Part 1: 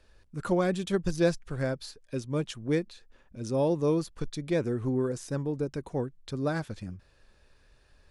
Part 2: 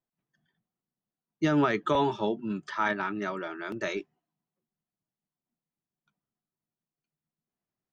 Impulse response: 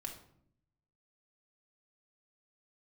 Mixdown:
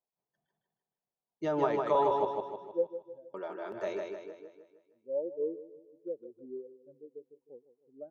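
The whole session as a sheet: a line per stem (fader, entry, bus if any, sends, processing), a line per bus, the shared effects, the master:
-1.0 dB, 1.55 s, no send, echo send -14.5 dB, band-pass filter 620 Hz, Q 0.75; spectral contrast expander 2.5:1; auto duck -22 dB, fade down 0.20 s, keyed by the second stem
-13.0 dB, 0.00 s, muted 2.25–3.34 s, no send, echo send -4 dB, high-order bell 640 Hz +13 dB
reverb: none
echo: feedback delay 155 ms, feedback 47%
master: none

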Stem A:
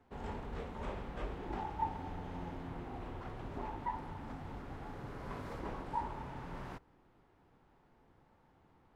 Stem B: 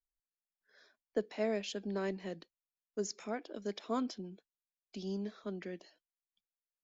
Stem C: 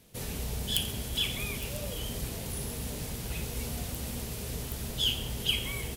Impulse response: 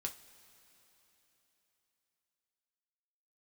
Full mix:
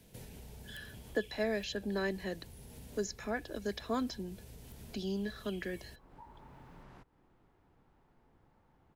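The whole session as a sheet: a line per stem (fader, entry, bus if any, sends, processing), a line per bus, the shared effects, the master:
-14.5 dB, 0.25 s, bus A, no send, compression 2:1, threshold -52 dBFS, peak gain reduction 12 dB
+2.0 dB, 0.00 s, no bus, no send, small resonant body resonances 1.7/4 kHz, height 16 dB
-13.5 dB, 0.00 s, bus A, no send, band-stop 1.2 kHz, Q 5.3
bus A: 0.0 dB, bass shelf 110 Hz +9.5 dB; compression 4:1, threshold -52 dBFS, peak gain reduction 13.5 dB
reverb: none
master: three bands compressed up and down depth 40%

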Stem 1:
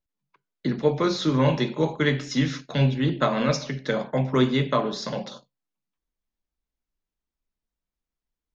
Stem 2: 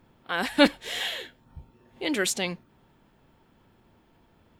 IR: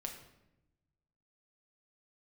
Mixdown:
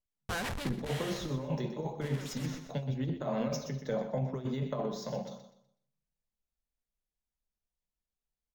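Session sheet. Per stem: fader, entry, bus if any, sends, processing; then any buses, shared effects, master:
-7.5 dB, 0.00 s, send -21.5 dB, echo send -9.5 dB, de-hum 89.64 Hz, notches 4; compressor with a negative ratio -23 dBFS, ratio -0.5; high-order bell 2.3 kHz -10 dB 2.5 oct
+2.5 dB, 0.00 s, no send, echo send -23.5 dB, Schmitt trigger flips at -33 dBFS; auto duck -17 dB, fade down 1.30 s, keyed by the first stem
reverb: on, RT60 0.90 s, pre-delay 6 ms
echo: feedback delay 124 ms, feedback 29%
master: peaking EQ 310 Hz -7.5 dB 0.63 oct; decimation joined by straight lines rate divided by 2×

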